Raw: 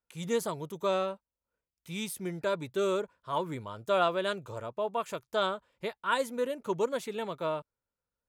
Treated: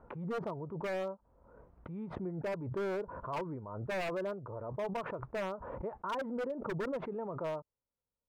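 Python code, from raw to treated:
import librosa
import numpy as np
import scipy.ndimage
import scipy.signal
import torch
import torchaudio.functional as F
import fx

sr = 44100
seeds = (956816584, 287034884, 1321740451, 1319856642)

y = scipy.signal.sosfilt(scipy.signal.butter(4, 1100.0, 'lowpass', fs=sr, output='sos'), x)
y = 10.0 ** (-26.5 / 20.0) * (np.abs((y / 10.0 ** (-26.5 / 20.0) + 3.0) % 4.0 - 2.0) - 1.0)
y = fx.pre_swell(y, sr, db_per_s=42.0)
y = y * librosa.db_to_amplitude(-4.0)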